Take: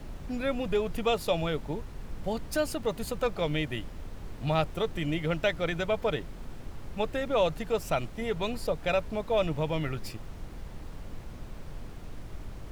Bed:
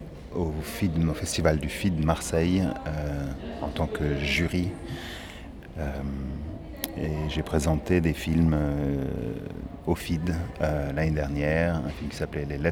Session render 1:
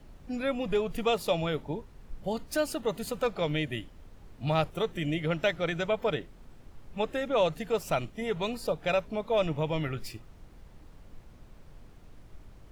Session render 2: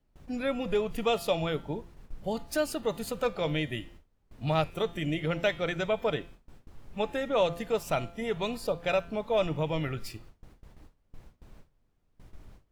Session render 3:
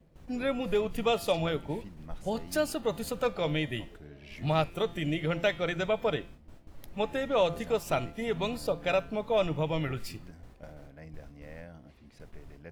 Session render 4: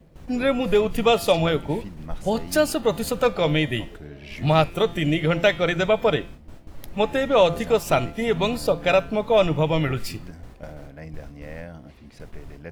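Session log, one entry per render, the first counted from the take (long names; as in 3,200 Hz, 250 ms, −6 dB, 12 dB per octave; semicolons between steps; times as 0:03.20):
noise reduction from a noise print 10 dB
hum removal 170.9 Hz, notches 28; noise gate with hold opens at −40 dBFS
mix in bed −22.5 dB
level +9 dB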